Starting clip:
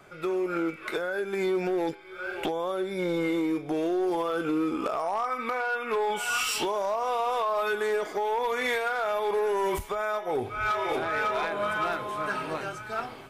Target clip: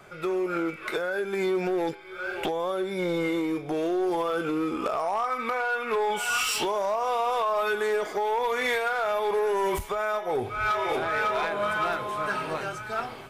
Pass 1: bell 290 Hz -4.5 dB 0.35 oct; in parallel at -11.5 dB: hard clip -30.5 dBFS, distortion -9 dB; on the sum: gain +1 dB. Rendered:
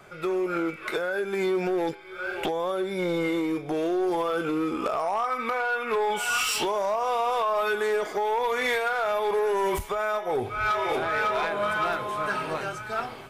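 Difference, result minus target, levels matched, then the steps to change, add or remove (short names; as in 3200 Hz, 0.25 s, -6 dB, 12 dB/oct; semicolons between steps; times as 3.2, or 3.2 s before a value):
hard clip: distortion -4 dB
change: hard clip -37.5 dBFS, distortion -5 dB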